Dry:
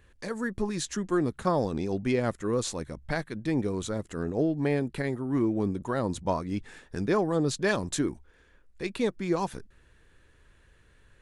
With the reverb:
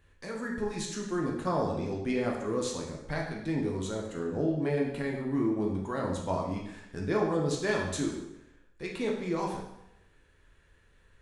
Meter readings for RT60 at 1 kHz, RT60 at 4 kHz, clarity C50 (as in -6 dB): 0.85 s, 0.80 s, 3.5 dB